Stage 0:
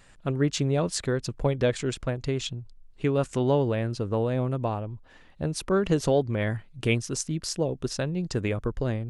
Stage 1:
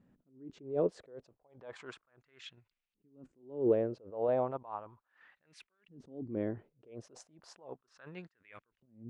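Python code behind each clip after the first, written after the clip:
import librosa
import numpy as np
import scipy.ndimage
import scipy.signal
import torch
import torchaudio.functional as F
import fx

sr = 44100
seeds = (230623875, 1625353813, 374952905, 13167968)

y = fx.filter_lfo_bandpass(x, sr, shape='saw_up', hz=0.34, low_hz=210.0, high_hz=2700.0, q=2.7)
y = fx.tremolo_random(y, sr, seeds[0], hz=3.5, depth_pct=55)
y = fx.attack_slew(y, sr, db_per_s=140.0)
y = F.gain(torch.from_numpy(y), 7.0).numpy()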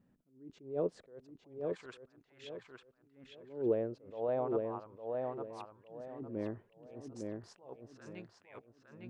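y = fx.echo_filtered(x, sr, ms=857, feedback_pct=31, hz=4400.0, wet_db=-3.5)
y = F.gain(torch.from_numpy(y), -3.5).numpy()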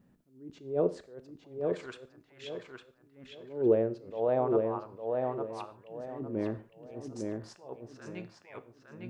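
y = fx.rev_gated(x, sr, seeds[1], gate_ms=170, shape='falling', drr_db=11.5)
y = F.gain(torch.from_numpy(y), 6.0).numpy()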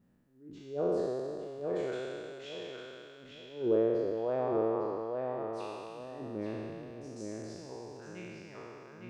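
y = fx.spec_trails(x, sr, decay_s=2.75)
y = F.gain(torch.from_numpy(y), -6.5).numpy()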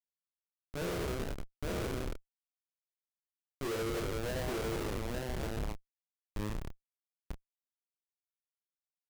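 y = fx.schmitt(x, sr, flips_db=-32.5)
y = fx.doubler(y, sr, ms=29.0, db=-7.5)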